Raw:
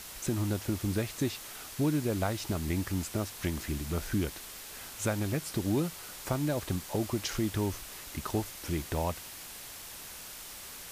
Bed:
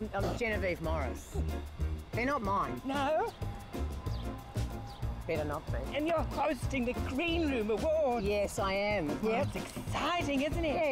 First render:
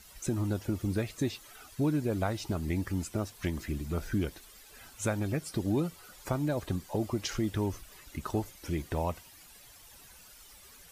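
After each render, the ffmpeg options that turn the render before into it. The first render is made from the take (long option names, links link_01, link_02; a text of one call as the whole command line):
ffmpeg -i in.wav -af "afftdn=noise_reduction=13:noise_floor=-45" out.wav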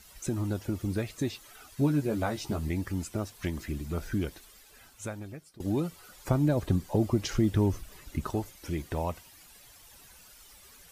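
ffmpeg -i in.wav -filter_complex "[0:a]asettb=1/sr,asplit=3[link_01][link_02][link_03];[link_01]atrim=end=1.764[link_04];[link_02]atrim=start=1.76:end=2.68,asetpts=PTS-STARTPTS,afade=type=in:duration=0.004:curve=qsin,afade=type=out:start_time=0.916:duration=0.004:curve=qsin,asplit=2[link_05][link_06];[link_06]adelay=14,volume=-4dB[link_07];[link_05][link_07]amix=inputs=2:normalize=0,atrim=end_sample=40572[link_08];[link_03]atrim=start=2.676[link_09];[link_04][link_08]acrossfade=duration=0.004:curve1=hsin:curve2=qsin[link_10];[link_10][link_09]acrossfade=duration=0.004:curve1=qsin:curve2=hsin,asettb=1/sr,asplit=3[link_11][link_12][link_13];[link_11]atrim=end=6.284[link_14];[link_12]atrim=start=6.28:end=8.3,asetpts=PTS-STARTPTS,afade=type=in:duration=0.004:curve=qsin,afade=type=out:start_time=2.016:duration=0.004:curve=qsin,lowshelf=frequency=470:gain=7.5[link_15];[link_13]atrim=start=8.296[link_16];[link_14][link_15]acrossfade=duration=0.004:curve1=hsin:curve2=qsin[link_17];[link_17][link_16]acrossfade=duration=0.004:curve1=qsin:curve2=hsin,asplit=2[link_18][link_19];[link_18]atrim=end=5.6,asetpts=PTS-STARTPTS,afade=type=out:start_time=4.37:duration=1.23:silence=0.0749894[link_20];[link_19]atrim=start=5.6,asetpts=PTS-STARTPTS,afade=type=in:duration=0.004:curve=hsin:silence=0.0749894[link_21];[link_20][link_21]concat=n=2:v=0:a=1" out.wav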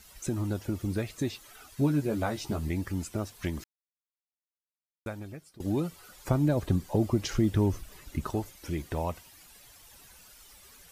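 ffmpeg -i in.wav -filter_complex "[0:a]asplit=3[link_01][link_02][link_03];[link_01]atrim=end=3.64,asetpts=PTS-STARTPTS,afade=type=out:start_time=3.636:duration=0.004:curve=hsin[link_04];[link_02]atrim=start=3.64:end=5.06,asetpts=PTS-STARTPTS,volume=0[link_05];[link_03]atrim=start=5.06,asetpts=PTS-STARTPTS,afade=type=in:duration=0.004:curve=hsin[link_06];[link_04][link_05][link_06]concat=n=3:v=0:a=1" out.wav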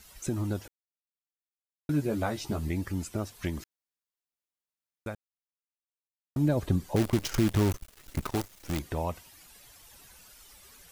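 ffmpeg -i in.wav -filter_complex "[0:a]asettb=1/sr,asplit=3[link_01][link_02][link_03];[link_01]atrim=end=6.964[link_04];[link_02]atrim=start=6.96:end=8.79,asetpts=PTS-STARTPTS,afade=type=in:duration=0.004:curve=qsin,afade=type=out:start_time=1.826:duration=0.004:curve=qsin,acrusher=bits=6:dc=4:mix=0:aa=0.000001[link_05];[link_03]atrim=start=8.786[link_06];[link_04][link_05]acrossfade=duration=0.004:curve1=hsin:curve2=qsin[link_07];[link_07][link_06]acrossfade=duration=0.004:curve1=qsin:curve2=hsin,asplit=5[link_08][link_09][link_10][link_11][link_12];[link_08]atrim=end=0.68,asetpts=PTS-STARTPTS,afade=type=out:start_time=0.676:duration=0.004:curve=hsin[link_13];[link_09]atrim=start=0.68:end=1.89,asetpts=PTS-STARTPTS,volume=0[link_14];[link_10]atrim=start=1.89:end=5.15,asetpts=PTS-STARTPTS,afade=type=in:duration=0.004:curve=hsin,afade=type=out:start_time=3.256:duration=0.004:curve=hsin[link_15];[link_11]atrim=start=5.15:end=6.36,asetpts=PTS-STARTPTS,volume=0[link_16];[link_12]atrim=start=6.36,asetpts=PTS-STARTPTS,afade=type=in:duration=0.004:curve=hsin[link_17];[link_13][link_14][link_15][link_16][link_17]concat=n=5:v=0:a=1" out.wav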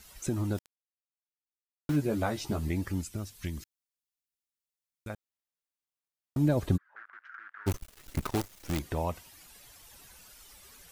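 ffmpeg -i in.wav -filter_complex "[0:a]asplit=3[link_01][link_02][link_03];[link_01]afade=type=out:start_time=0.57:duration=0.02[link_04];[link_02]aeval=exprs='val(0)*gte(abs(val(0)),0.0168)':channel_layout=same,afade=type=in:start_time=0.57:duration=0.02,afade=type=out:start_time=1.95:duration=0.02[link_05];[link_03]afade=type=in:start_time=1.95:duration=0.02[link_06];[link_04][link_05][link_06]amix=inputs=3:normalize=0,asettb=1/sr,asplit=3[link_07][link_08][link_09];[link_07]atrim=end=3.014[link_10];[link_08]atrim=start=3.01:end=5.1,asetpts=PTS-STARTPTS,afade=type=in:duration=0.004:curve=qsin,afade=type=out:start_time=2.086:duration=0.004:curve=qsin,equalizer=frequency=710:width_type=o:width=2.8:gain=-11.5[link_11];[link_09]atrim=start=5.096[link_12];[link_10][link_11]acrossfade=duration=0.004:curve1=hsin:curve2=qsin[link_13];[link_13][link_12]acrossfade=duration=0.004:curve1=qsin:curve2=hsin,asplit=3[link_14][link_15][link_16];[link_14]afade=type=out:start_time=6.76:duration=0.02[link_17];[link_15]asuperpass=centerf=1500:order=4:qfactor=3.5,afade=type=in:start_time=6.76:duration=0.02,afade=type=out:start_time=7.66:duration=0.02[link_18];[link_16]afade=type=in:start_time=7.66:duration=0.02[link_19];[link_17][link_18][link_19]amix=inputs=3:normalize=0" out.wav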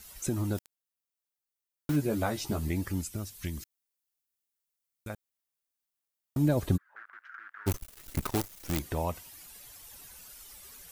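ffmpeg -i in.wav -af "highshelf=frequency=8600:gain=8.5" out.wav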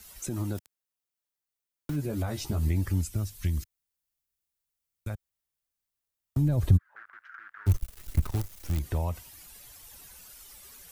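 ffmpeg -i in.wav -filter_complex "[0:a]acrossover=split=110[link_01][link_02];[link_01]dynaudnorm=framelen=440:gausssize=11:maxgain=13dB[link_03];[link_02]alimiter=level_in=1dB:limit=-24dB:level=0:latency=1:release=80,volume=-1dB[link_04];[link_03][link_04]amix=inputs=2:normalize=0" out.wav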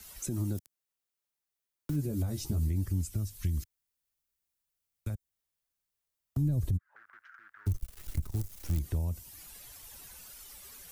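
ffmpeg -i in.wav -filter_complex "[0:a]acrossover=split=390|4900[link_01][link_02][link_03];[link_02]acompressor=threshold=-52dB:ratio=6[link_04];[link_01][link_04][link_03]amix=inputs=3:normalize=0,alimiter=limit=-21.5dB:level=0:latency=1:release=345" out.wav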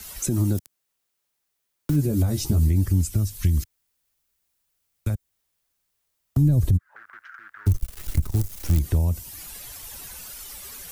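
ffmpeg -i in.wav -af "volume=10.5dB" out.wav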